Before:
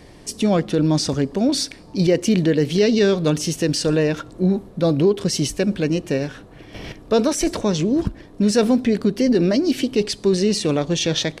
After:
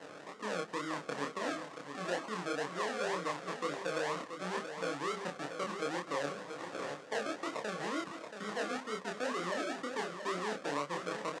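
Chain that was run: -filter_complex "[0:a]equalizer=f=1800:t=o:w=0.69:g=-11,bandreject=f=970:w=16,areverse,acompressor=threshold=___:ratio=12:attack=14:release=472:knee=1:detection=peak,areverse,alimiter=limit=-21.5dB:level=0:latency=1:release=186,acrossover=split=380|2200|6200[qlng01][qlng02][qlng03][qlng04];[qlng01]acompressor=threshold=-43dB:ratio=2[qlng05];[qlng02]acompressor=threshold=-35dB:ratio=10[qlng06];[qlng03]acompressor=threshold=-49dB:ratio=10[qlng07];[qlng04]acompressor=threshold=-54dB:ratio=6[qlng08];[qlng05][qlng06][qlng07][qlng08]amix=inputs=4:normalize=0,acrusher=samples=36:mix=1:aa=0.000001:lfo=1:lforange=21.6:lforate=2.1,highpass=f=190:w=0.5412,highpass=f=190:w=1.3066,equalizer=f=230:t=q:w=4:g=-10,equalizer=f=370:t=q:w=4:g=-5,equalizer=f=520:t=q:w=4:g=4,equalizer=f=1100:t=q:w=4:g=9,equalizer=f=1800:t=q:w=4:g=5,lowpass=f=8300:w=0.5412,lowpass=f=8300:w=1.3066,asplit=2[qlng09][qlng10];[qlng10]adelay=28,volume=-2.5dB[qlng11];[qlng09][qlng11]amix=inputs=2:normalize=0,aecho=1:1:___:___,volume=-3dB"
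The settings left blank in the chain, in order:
-27dB, 680, 0.376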